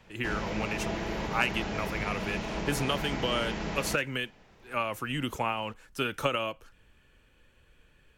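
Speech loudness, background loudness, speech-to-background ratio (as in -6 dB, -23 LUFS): -32.5 LUFS, -35.0 LUFS, 2.5 dB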